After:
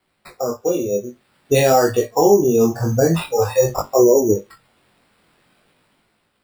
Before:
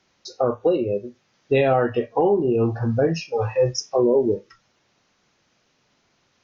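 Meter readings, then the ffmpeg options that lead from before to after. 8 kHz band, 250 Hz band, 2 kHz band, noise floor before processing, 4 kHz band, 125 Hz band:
can't be measured, +4.0 dB, +3.5 dB, −67 dBFS, +4.0 dB, +3.0 dB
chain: -af "acrusher=samples=7:mix=1:aa=0.000001,flanger=delay=18.5:depth=5.4:speed=0.49,dynaudnorm=framelen=340:gausssize=5:maxgain=10dB"

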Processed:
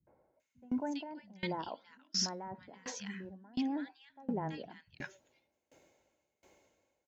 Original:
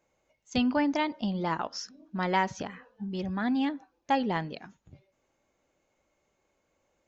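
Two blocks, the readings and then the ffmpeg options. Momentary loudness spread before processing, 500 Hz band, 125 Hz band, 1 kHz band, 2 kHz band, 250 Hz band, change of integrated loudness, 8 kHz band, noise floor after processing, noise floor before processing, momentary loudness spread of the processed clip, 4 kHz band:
14 LU, −10.0 dB, −9.5 dB, −13.5 dB, −12.0 dB, −9.0 dB, −9.5 dB, can't be measured, −85 dBFS, −76 dBFS, 14 LU, −2.0 dB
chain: -filter_complex "[0:a]highpass=76,areverse,acompressor=threshold=-41dB:ratio=10,areverse,asuperstop=centerf=1200:order=4:qfactor=6.6,acrossover=split=170|1400[link_01][link_02][link_03];[link_02]adelay=70[link_04];[link_03]adelay=400[link_05];[link_01][link_04][link_05]amix=inputs=3:normalize=0,aeval=exprs='val(0)*pow(10,-27*if(lt(mod(1.4*n/s,1),2*abs(1.4)/1000),1-mod(1.4*n/s,1)/(2*abs(1.4)/1000),(mod(1.4*n/s,1)-2*abs(1.4)/1000)/(1-2*abs(1.4)/1000))/20)':channel_layout=same,volume=13.5dB"

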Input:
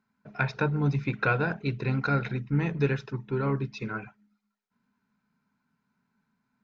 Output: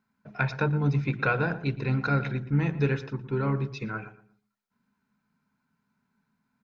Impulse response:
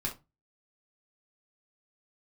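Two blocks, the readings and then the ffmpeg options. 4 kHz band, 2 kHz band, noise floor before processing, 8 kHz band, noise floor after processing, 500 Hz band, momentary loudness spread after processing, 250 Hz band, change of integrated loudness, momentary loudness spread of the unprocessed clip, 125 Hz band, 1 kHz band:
0.0 dB, 0.0 dB, −79 dBFS, can't be measured, −79 dBFS, 0.0 dB, 9 LU, +0.5 dB, +1.0 dB, 8 LU, +1.5 dB, 0.0 dB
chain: -filter_complex "[0:a]equalizer=frequency=67:width=0.49:gain=3,bandreject=frequency=60:width_type=h:width=6,bandreject=frequency=120:width_type=h:width=6,bandreject=frequency=180:width_type=h:width=6,bandreject=frequency=240:width_type=h:width=6,bandreject=frequency=300:width_type=h:width=6,bandreject=frequency=360:width_type=h:width=6,bandreject=frequency=420:width_type=h:width=6,asplit=2[link_01][link_02];[link_02]adelay=117,lowpass=frequency=1800:poles=1,volume=-13.5dB,asplit=2[link_03][link_04];[link_04]adelay=117,lowpass=frequency=1800:poles=1,volume=0.29,asplit=2[link_05][link_06];[link_06]adelay=117,lowpass=frequency=1800:poles=1,volume=0.29[link_07];[link_03][link_05][link_07]amix=inputs=3:normalize=0[link_08];[link_01][link_08]amix=inputs=2:normalize=0"

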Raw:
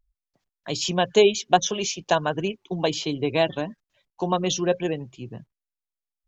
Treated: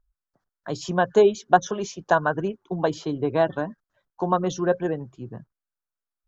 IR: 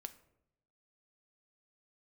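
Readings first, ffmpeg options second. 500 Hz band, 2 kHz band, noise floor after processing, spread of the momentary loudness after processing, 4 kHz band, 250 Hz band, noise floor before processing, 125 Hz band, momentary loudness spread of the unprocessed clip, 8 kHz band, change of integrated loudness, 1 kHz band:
+0.5 dB, +1.0 dB, below −85 dBFS, 15 LU, −12.0 dB, 0.0 dB, below −85 dBFS, 0.0 dB, 15 LU, can't be measured, 0.0 dB, +2.0 dB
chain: -af "highshelf=frequency=1900:width_type=q:width=3:gain=-8.5"

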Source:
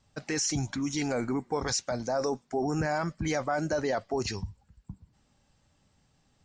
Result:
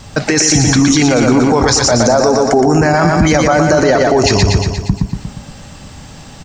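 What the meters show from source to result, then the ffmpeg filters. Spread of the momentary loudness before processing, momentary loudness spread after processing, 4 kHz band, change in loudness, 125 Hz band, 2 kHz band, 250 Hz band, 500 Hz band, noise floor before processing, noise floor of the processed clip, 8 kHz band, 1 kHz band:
7 LU, 8 LU, +20.5 dB, +19.5 dB, +21.5 dB, +20.0 dB, +20.5 dB, +19.5 dB, −70 dBFS, −35 dBFS, +19.5 dB, +19.5 dB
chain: -filter_complex "[0:a]acompressor=threshold=-36dB:ratio=6,asplit=2[link_01][link_02];[link_02]aecho=0:1:118|236|354|472|590|708|826|944:0.501|0.291|0.169|0.0978|0.0567|0.0329|0.0191|0.0111[link_03];[link_01][link_03]amix=inputs=2:normalize=0,alimiter=level_in=34dB:limit=-1dB:release=50:level=0:latency=1,volume=-1dB"

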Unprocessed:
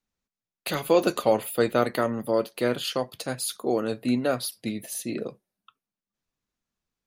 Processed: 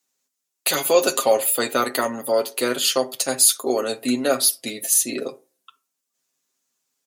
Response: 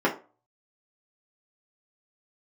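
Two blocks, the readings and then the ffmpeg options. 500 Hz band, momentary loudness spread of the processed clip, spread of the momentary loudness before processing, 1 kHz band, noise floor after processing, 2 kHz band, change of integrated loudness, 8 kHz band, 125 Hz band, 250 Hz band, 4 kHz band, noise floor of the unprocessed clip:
+3.5 dB, 9 LU, 10 LU, +4.5 dB, −80 dBFS, +6.0 dB, +6.5 dB, +16.5 dB, −7.0 dB, +0.5 dB, +10.0 dB, below −85 dBFS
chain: -filter_complex "[0:a]equalizer=frequency=7100:width=1.6:gain=7,asplit=2[link_01][link_02];[link_02]alimiter=limit=-15dB:level=0:latency=1:release=361,volume=-1dB[link_03];[link_01][link_03]amix=inputs=2:normalize=0,highpass=290,aemphasis=mode=production:type=cd,aecho=1:1:7.5:0.65,asplit=2[link_04][link_05];[1:a]atrim=start_sample=2205,adelay=44[link_06];[link_05][link_06]afir=irnorm=-1:irlink=0,volume=-32dB[link_07];[link_04][link_07]amix=inputs=2:normalize=0,volume=-1dB"

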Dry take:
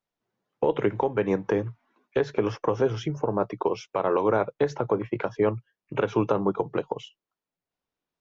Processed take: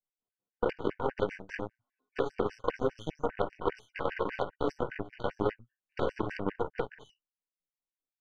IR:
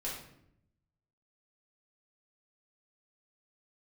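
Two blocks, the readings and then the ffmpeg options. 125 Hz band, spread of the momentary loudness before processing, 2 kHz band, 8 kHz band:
−10.0 dB, 7 LU, −4.5 dB, can't be measured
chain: -filter_complex "[1:a]atrim=start_sample=2205,atrim=end_sample=3087[link_01];[0:a][link_01]afir=irnorm=-1:irlink=0,aeval=exprs='0.398*(cos(1*acos(clip(val(0)/0.398,-1,1)))-cos(1*PI/2))+0.0316*(cos(6*acos(clip(val(0)/0.398,-1,1)))-cos(6*PI/2))+0.0501*(cos(7*acos(clip(val(0)/0.398,-1,1)))-cos(7*PI/2))+0.0501*(cos(8*acos(clip(val(0)/0.398,-1,1)))-cos(8*PI/2))':channel_layout=same,acompressor=threshold=-27dB:ratio=6,afftfilt=real='re*gt(sin(2*PI*5*pts/sr)*(1-2*mod(floor(b*sr/1024/1500),2)),0)':imag='im*gt(sin(2*PI*5*pts/sr)*(1-2*mod(floor(b*sr/1024/1500),2)),0)':win_size=1024:overlap=0.75,volume=2.5dB"

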